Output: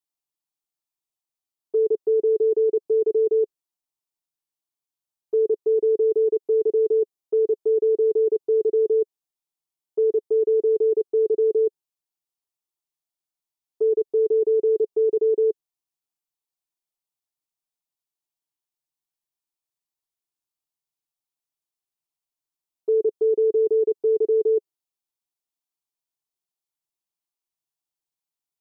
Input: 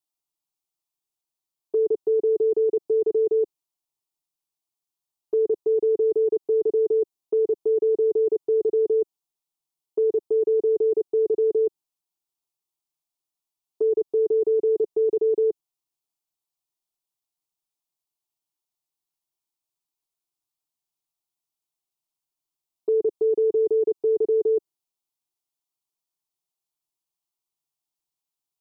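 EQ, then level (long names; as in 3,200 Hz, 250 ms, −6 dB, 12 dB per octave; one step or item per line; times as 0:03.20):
dynamic equaliser 430 Hz, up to +5 dB, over −32 dBFS, Q 3.5
−3.5 dB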